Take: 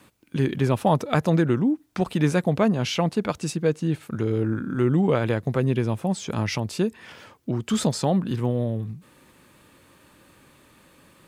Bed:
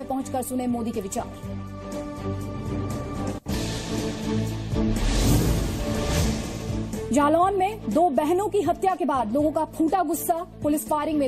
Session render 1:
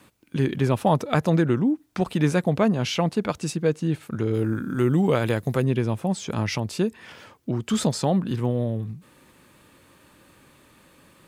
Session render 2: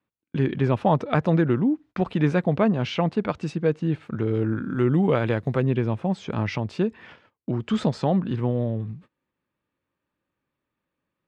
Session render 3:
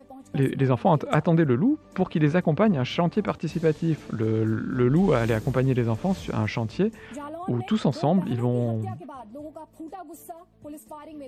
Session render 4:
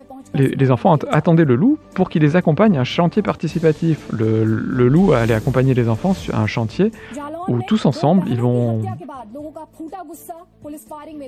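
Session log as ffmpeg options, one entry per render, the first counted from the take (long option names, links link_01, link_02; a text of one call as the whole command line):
ffmpeg -i in.wav -filter_complex "[0:a]asettb=1/sr,asplit=3[link_01][link_02][link_03];[link_01]atrim=end=4.344[link_04];[link_02]atrim=start=4.34:end=5.62,asetpts=PTS-STARTPTS,afade=type=in:duration=0.004:curve=qsin,afade=type=out:start_time=1.276:duration=0.004:curve=qsin,aemphasis=mode=production:type=50kf[link_05];[link_03]atrim=start=5.616[link_06];[link_04][link_05]acrossfade=duration=0.004:curve1=hsin:curve2=qsin[link_07];[link_07][link_06]acrossfade=duration=0.004:curve1=qsin:curve2=hsin" out.wav
ffmpeg -i in.wav -af "lowpass=3000,agate=range=-27dB:threshold=-44dB:ratio=16:detection=peak" out.wav
ffmpeg -i in.wav -i bed.wav -filter_complex "[1:a]volume=-17dB[link_01];[0:a][link_01]amix=inputs=2:normalize=0" out.wav
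ffmpeg -i in.wav -af "volume=7.5dB,alimiter=limit=-2dB:level=0:latency=1" out.wav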